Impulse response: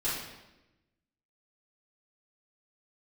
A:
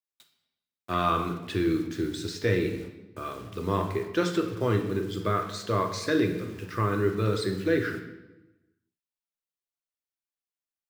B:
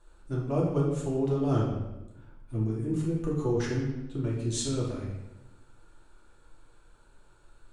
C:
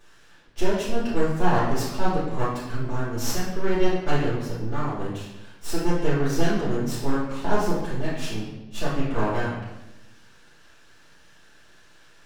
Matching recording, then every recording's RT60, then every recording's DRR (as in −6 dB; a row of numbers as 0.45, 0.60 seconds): C; 1.0, 1.0, 1.0 seconds; 4.0, −5.0, −12.0 decibels